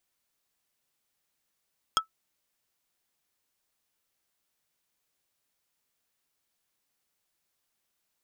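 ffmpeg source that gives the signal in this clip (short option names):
-f lavfi -i "aevalsrc='0.15*pow(10,-3*t/0.11)*sin(2*PI*1310*t)+0.119*pow(10,-3*t/0.037)*sin(2*PI*3275*t)+0.0944*pow(10,-3*t/0.021)*sin(2*PI*5240*t)+0.075*pow(10,-3*t/0.016)*sin(2*PI*6550*t)+0.0596*pow(10,-3*t/0.012)*sin(2*PI*8515*t)':d=0.45:s=44100"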